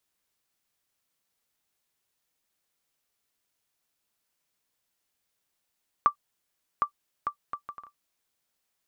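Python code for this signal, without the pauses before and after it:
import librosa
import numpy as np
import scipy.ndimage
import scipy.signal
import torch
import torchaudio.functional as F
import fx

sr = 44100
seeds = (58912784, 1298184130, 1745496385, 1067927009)

y = fx.bouncing_ball(sr, first_gap_s=0.76, ratio=0.59, hz=1170.0, decay_ms=94.0, level_db=-10.0)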